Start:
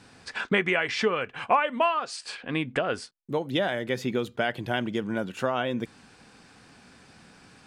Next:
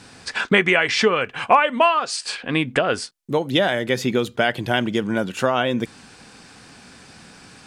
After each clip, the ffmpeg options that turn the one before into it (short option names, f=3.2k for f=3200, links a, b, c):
-af "equalizer=f=7.8k:t=o:w=2.2:g=4.5,volume=7dB"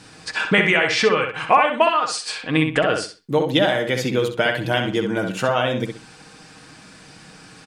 -filter_complex "[0:a]aecho=1:1:6.4:0.45,asplit=2[a][b];[b]adelay=64,lowpass=f=3.9k:p=1,volume=-5dB,asplit=2[c][d];[d]adelay=64,lowpass=f=3.9k:p=1,volume=0.28,asplit=2[e][f];[f]adelay=64,lowpass=f=3.9k:p=1,volume=0.28,asplit=2[g][h];[h]adelay=64,lowpass=f=3.9k:p=1,volume=0.28[i];[c][e][g][i]amix=inputs=4:normalize=0[j];[a][j]amix=inputs=2:normalize=0,volume=-1dB"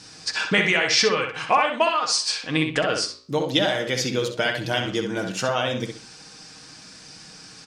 -af "equalizer=f=5.5k:t=o:w=1:g=12.5,flanger=delay=9.1:depth=8.3:regen=-82:speed=1.1:shape=sinusoidal"